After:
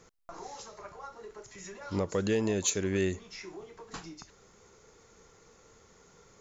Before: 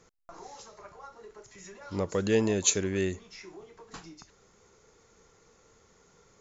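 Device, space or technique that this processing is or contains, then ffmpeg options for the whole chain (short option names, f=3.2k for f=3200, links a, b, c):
clipper into limiter: -af "asoftclip=type=hard:threshold=-14dB,alimiter=limit=-21.5dB:level=0:latency=1:release=311,volume=2.5dB"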